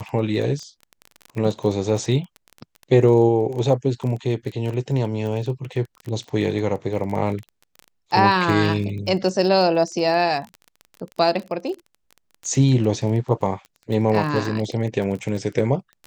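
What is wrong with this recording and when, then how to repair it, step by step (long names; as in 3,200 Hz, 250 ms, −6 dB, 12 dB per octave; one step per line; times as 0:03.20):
surface crackle 23 per second −28 dBFS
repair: click removal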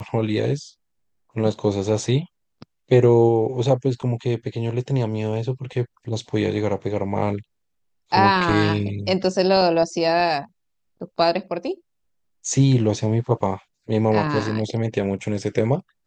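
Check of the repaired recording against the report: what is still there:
none of them is left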